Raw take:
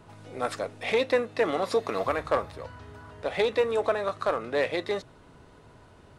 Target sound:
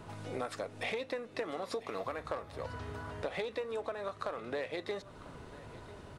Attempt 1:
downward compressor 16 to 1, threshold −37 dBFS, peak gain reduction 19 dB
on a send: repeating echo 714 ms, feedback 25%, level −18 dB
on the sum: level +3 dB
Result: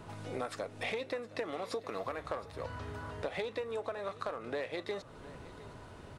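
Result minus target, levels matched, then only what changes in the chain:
echo 282 ms early
change: repeating echo 996 ms, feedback 25%, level −18 dB

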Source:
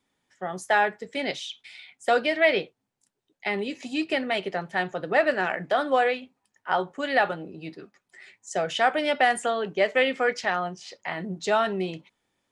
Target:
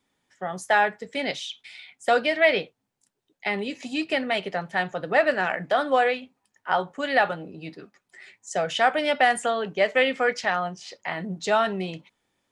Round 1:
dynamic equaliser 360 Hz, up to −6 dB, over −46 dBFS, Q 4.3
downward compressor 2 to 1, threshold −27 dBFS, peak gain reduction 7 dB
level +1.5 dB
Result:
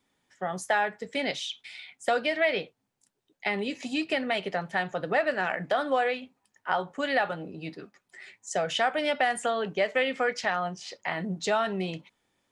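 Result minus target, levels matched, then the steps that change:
downward compressor: peak gain reduction +7 dB
remove: downward compressor 2 to 1, threshold −27 dBFS, peak gain reduction 7 dB

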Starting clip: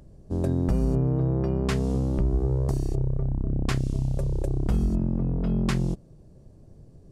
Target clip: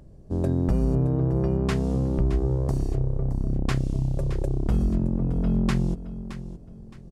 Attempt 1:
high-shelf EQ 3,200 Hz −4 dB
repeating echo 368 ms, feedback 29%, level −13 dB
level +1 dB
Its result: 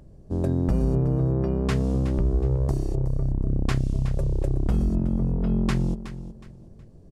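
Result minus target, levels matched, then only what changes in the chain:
echo 250 ms early
change: repeating echo 618 ms, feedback 29%, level −13 dB

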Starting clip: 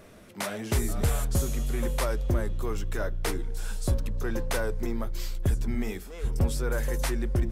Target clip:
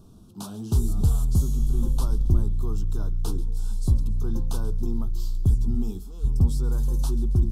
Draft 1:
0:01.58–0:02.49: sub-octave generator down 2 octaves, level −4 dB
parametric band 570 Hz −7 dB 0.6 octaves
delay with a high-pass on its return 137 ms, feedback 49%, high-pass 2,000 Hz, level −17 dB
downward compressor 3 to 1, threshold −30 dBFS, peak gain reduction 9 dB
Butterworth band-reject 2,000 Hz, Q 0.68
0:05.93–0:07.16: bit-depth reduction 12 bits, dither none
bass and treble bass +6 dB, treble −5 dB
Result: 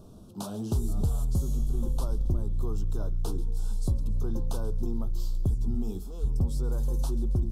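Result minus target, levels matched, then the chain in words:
downward compressor: peak gain reduction +9 dB; 500 Hz band +5.0 dB
0:01.58–0:02.49: sub-octave generator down 2 octaves, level −4 dB
Butterworth band-reject 2,000 Hz, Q 0.68
parametric band 570 Hz −18 dB 0.6 octaves
delay with a high-pass on its return 137 ms, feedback 49%, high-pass 2,000 Hz, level −17 dB
0:05.93–0:07.16: bit-depth reduction 12 bits, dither none
bass and treble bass +6 dB, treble −5 dB

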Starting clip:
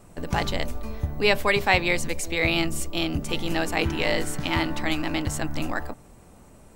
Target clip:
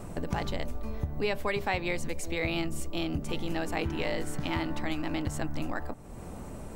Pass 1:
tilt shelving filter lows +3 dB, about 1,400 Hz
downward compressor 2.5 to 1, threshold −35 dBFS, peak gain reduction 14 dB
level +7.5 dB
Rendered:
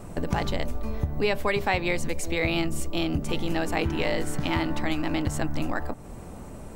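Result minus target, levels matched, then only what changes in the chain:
downward compressor: peak gain reduction −5 dB
change: downward compressor 2.5 to 1, threshold −43.5 dBFS, peak gain reduction 19 dB

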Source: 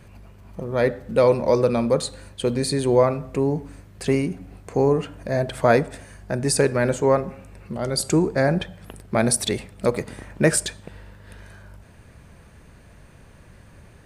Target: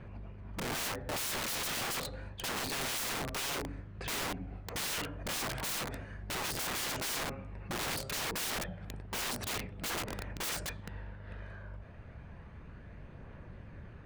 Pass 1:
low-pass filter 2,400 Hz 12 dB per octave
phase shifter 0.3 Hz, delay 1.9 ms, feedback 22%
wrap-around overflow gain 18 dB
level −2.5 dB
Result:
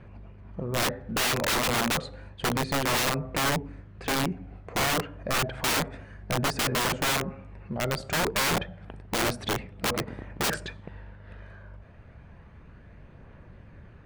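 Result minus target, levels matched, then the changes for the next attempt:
wrap-around overflow: distortion −11 dB
change: wrap-around overflow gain 28.5 dB

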